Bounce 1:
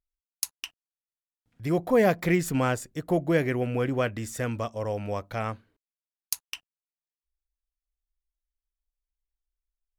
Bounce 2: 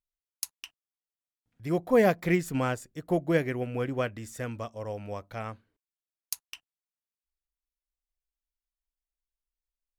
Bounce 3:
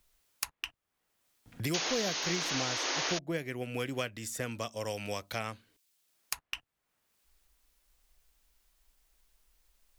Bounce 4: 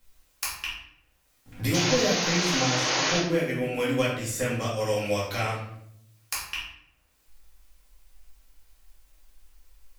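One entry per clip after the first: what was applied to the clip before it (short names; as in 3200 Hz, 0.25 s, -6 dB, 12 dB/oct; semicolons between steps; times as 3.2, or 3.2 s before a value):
upward expander 1.5:1, over -31 dBFS
painted sound noise, 1.74–3.19, 260–6800 Hz -26 dBFS; three-band squash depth 100%; gain -8 dB
reverb RT60 0.75 s, pre-delay 4 ms, DRR -7.5 dB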